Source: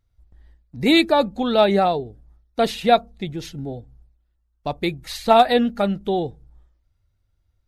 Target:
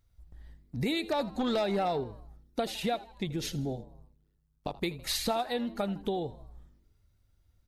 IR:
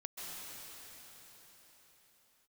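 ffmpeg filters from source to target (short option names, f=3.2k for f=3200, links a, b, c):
-filter_complex "[0:a]acompressor=threshold=-29dB:ratio=8,highshelf=f=5.7k:g=6,asettb=1/sr,asplit=3[a][b][c];[a]atrim=end=1.034[d];[b]atrim=start=1.03:end=2.04,asetpts=PTS-STARTPTS,afade=t=in:d=0.004:c=qsin,afade=t=out:st=1.006:d=0.004:c=qsin,aeval=exprs='0.1*(cos(1*acos(clip(val(0)/0.1,-1,1)))-cos(1*PI/2))+0.0178*(cos(5*acos(clip(val(0)/0.1,-1,1)))-cos(5*PI/2))+0.00398*(cos(7*acos(clip(val(0)/0.1,-1,1)))-cos(7*PI/2))':c=same[e];[c]atrim=start=2.036[f];[d][e]acrossfade=d=0.004:c1=hsin:c2=qsin[g];[g][f]acrossfade=d=0.004:c1=qsin:c2=hsin,asplit=3[h][i][j];[h]afade=t=out:st=3.75:d=0.02[k];[i]tremolo=f=99:d=0.974,afade=t=in:st=3.75:d=0.02,afade=t=out:st=4.76:d=0.02[l];[j]afade=t=in:st=4.76:d=0.02[m];[k][l][m]amix=inputs=3:normalize=0,asplit=2[n][o];[o]asplit=4[p][q][r][s];[p]adelay=80,afreqshift=95,volume=-19dB[t];[q]adelay=160,afreqshift=190,volume=-25.7dB[u];[r]adelay=240,afreqshift=285,volume=-32.5dB[v];[s]adelay=320,afreqshift=380,volume=-39.2dB[w];[t][u][v][w]amix=inputs=4:normalize=0[x];[n][x]amix=inputs=2:normalize=0"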